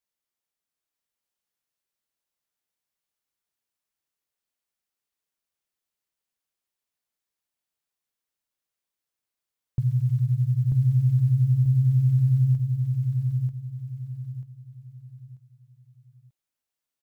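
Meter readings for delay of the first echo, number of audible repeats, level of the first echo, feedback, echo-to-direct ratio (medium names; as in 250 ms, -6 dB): 939 ms, 4, -3.5 dB, 34%, -3.0 dB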